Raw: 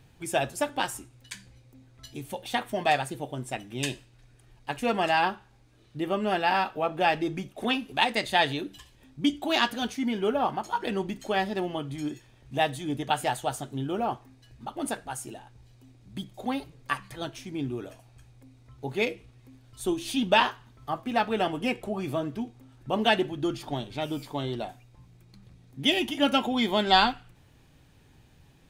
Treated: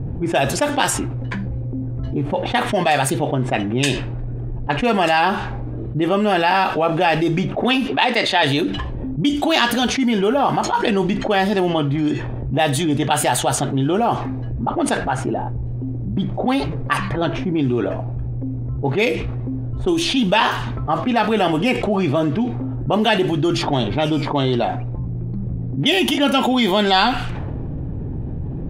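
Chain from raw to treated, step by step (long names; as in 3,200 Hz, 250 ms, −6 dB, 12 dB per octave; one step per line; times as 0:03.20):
low-pass that shuts in the quiet parts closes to 360 Hz, open at −24.5 dBFS
0:07.88–0:08.43: three-way crossover with the lows and the highs turned down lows −13 dB, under 230 Hz, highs −15 dB, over 5,500 Hz
envelope flattener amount 70%
level +3 dB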